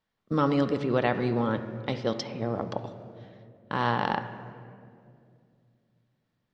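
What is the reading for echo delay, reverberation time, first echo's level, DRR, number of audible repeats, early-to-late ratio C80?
no echo audible, 2.4 s, no echo audible, 8.0 dB, no echo audible, 11.5 dB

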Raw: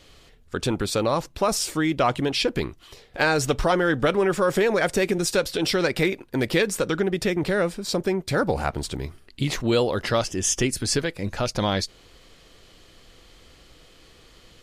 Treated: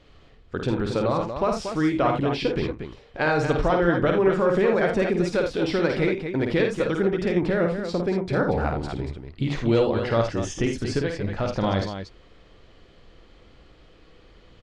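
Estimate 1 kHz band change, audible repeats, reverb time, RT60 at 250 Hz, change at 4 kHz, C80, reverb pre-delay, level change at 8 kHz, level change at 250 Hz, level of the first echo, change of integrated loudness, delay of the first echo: −0.5 dB, 2, no reverb audible, no reverb audible, −8.0 dB, no reverb audible, no reverb audible, −15.0 dB, +1.5 dB, −5.0 dB, 0.0 dB, 52 ms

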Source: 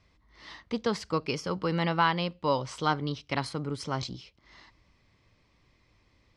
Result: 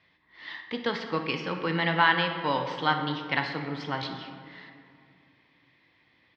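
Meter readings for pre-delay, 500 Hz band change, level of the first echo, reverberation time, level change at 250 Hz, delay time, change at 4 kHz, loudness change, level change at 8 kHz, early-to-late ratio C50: 5 ms, −0.5 dB, −14.5 dB, 2.4 s, 0.0 dB, 61 ms, +4.0 dB, +2.5 dB, below −10 dB, 6.0 dB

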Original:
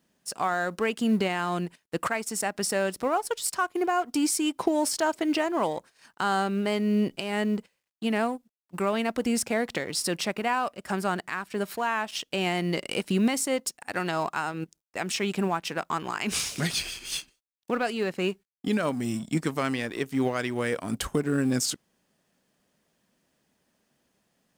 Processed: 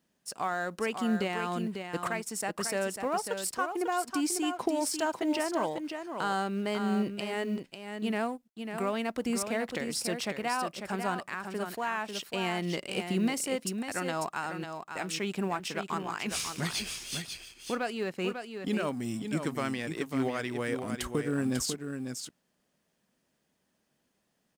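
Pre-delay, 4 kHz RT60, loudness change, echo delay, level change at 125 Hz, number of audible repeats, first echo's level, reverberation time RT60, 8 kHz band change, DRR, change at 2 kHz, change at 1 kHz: no reverb audible, no reverb audible, −4.5 dB, 546 ms, −4.5 dB, 1, −7.0 dB, no reverb audible, −4.0 dB, no reverb audible, −4.0 dB, −4.0 dB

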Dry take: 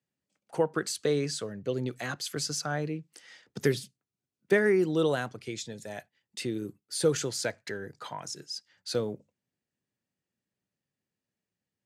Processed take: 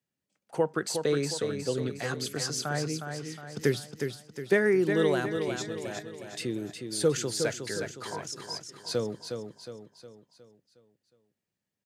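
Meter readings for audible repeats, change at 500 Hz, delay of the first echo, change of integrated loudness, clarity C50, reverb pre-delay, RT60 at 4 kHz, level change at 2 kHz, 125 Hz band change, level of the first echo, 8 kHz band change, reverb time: 5, +1.0 dB, 362 ms, +0.5 dB, no reverb audible, no reverb audible, no reverb audible, +1.0 dB, +1.0 dB, −6.5 dB, +1.0 dB, no reverb audible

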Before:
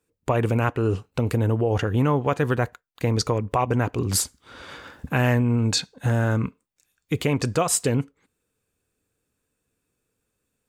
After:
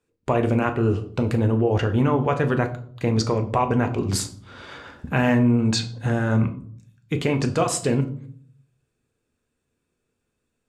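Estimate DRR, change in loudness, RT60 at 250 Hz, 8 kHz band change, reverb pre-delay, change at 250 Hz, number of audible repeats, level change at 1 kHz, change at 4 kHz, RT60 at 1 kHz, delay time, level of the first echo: 5.5 dB, +1.0 dB, 0.75 s, −4.5 dB, 5 ms, +3.5 dB, no echo audible, +1.0 dB, −1.0 dB, 0.50 s, no echo audible, no echo audible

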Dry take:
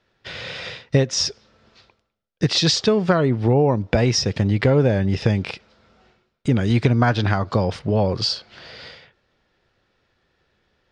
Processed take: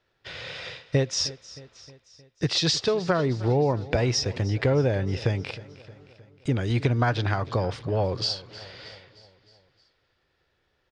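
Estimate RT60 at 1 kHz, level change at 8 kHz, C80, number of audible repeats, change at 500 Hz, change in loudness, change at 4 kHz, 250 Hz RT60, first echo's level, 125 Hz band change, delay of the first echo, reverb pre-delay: no reverb audible, −5.0 dB, no reverb audible, 4, −5.0 dB, −6.0 dB, −5.0 dB, no reverb audible, −18.5 dB, −5.5 dB, 311 ms, no reverb audible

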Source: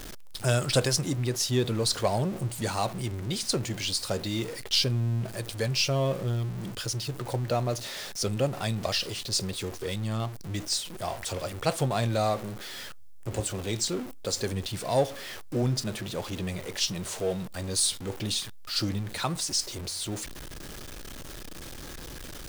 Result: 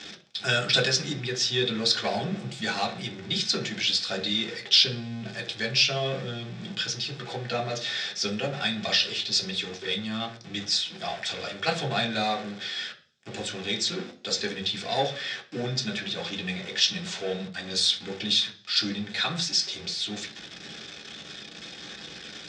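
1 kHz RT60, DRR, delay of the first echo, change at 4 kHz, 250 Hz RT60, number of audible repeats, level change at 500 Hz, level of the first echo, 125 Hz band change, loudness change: 0.40 s, 0.5 dB, no echo audible, +7.0 dB, 0.55 s, no echo audible, −2.0 dB, no echo audible, −7.0 dB, +2.5 dB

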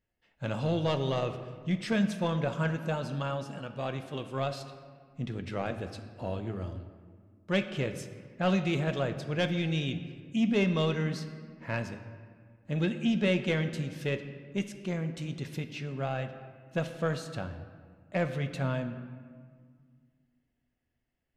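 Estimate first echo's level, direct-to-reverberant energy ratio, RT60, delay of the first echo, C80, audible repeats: no echo audible, 7.5 dB, 1.8 s, no echo audible, 11.0 dB, no echo audible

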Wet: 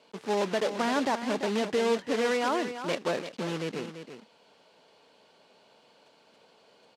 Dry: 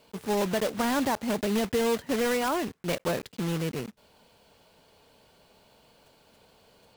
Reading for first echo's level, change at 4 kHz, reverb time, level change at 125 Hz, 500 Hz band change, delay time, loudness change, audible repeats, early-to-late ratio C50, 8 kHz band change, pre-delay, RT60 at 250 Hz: −10.0 dB, 0.0 dB, no reverb audible, −6.5 dB, 0.0 dB, 340 ms, −1.0 dB, 1, no reverb audible, −5.0 dB, no reverb audible, no reverb audible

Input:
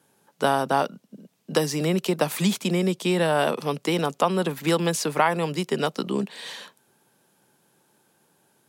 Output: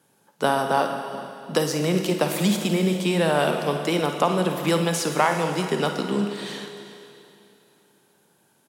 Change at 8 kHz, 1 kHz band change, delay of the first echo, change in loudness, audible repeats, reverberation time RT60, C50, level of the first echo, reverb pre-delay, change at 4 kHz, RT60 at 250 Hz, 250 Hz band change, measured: +1.5 dB, +1.0 dB, 54 ms, +1.0 dB, 2, 2.7 s, 5.0 dB, −12.0 dB, 32 ms, +1.5 dB, 2.8 s, +1.5 dB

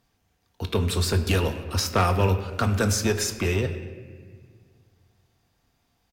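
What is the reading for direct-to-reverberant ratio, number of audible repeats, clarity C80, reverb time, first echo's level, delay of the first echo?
6.0 dB, 1, 11.0 dB, 1.7 s, −23.0 dB, 242 ms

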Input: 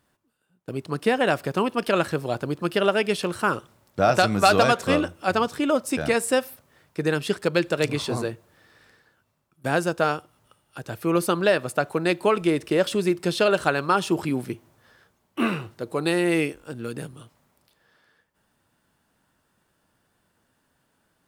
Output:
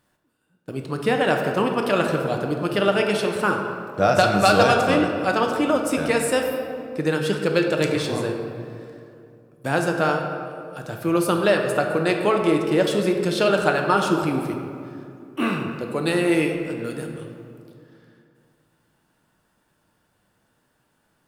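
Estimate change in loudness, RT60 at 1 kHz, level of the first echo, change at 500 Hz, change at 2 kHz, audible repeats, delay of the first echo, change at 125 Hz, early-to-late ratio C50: +2.0 dB, 2.4 s, no echo audible, +2.5 dB, +2.0 dB, no echo audible, no echo audible, +2.5 dB, 4.5 dB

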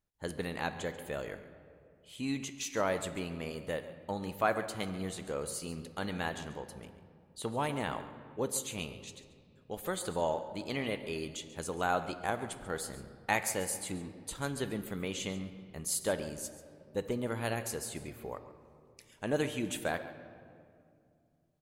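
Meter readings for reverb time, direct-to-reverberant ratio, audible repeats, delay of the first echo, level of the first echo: 2.4 s, 9.5 dB, 1, 139 ms, −15.5 dB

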